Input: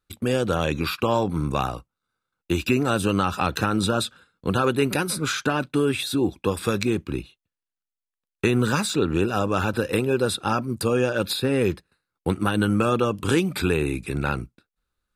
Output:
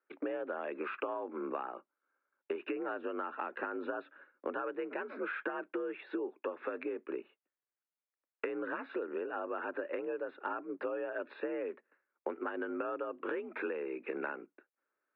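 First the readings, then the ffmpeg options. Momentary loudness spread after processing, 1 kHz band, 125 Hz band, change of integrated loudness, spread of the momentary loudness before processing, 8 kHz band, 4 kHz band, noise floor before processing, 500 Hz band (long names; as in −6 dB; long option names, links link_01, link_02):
5 LU, −14.0 dB, below −40 dB, −15.5 dB, 6 LU, below −40 dB, below −25 dB, below −85 dBFS, −12.5 dB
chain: -af "highpass=frequency=260:width_type=q:width=0.5412,highpass=frequency=260:width_type=q:width=1.307,lowpass=frequency=2200:width_type=q:width=0.5176,lowpass=frequency=2200:width_type=q:width=0.7071,lowpass=frequency=2200:width_type=q:width=1.932,afreqshift=55,acompressor=threshold=-34dB:ratio=16"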